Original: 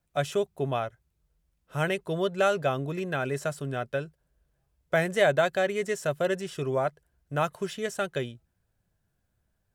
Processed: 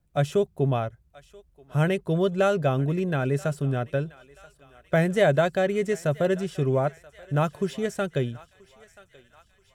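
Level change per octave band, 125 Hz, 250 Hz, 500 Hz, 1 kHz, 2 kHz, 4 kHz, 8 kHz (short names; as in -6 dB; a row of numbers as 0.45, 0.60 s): +9.0, +7.0, +3.0, +0.5, -1.0, -1.5, -1.5 dB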